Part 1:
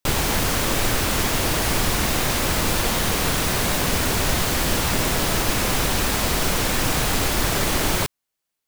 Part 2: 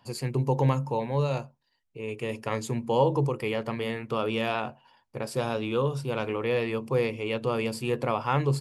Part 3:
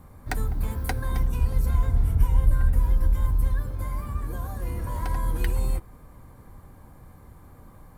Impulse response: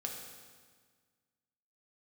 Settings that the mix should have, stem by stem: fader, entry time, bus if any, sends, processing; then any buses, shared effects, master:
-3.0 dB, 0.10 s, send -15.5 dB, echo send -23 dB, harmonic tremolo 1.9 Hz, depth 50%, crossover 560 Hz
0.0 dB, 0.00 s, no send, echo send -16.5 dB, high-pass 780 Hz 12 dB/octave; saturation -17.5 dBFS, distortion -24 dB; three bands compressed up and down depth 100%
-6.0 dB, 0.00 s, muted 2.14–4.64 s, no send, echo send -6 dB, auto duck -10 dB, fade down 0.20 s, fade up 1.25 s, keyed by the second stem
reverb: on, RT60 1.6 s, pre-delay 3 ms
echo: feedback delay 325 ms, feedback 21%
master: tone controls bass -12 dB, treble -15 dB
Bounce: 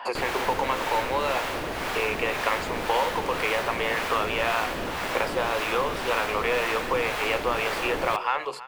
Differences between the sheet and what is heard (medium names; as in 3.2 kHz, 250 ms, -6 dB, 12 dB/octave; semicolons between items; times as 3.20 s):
stem 2 0.0 dB -> +8.0 dB; stem 3: muted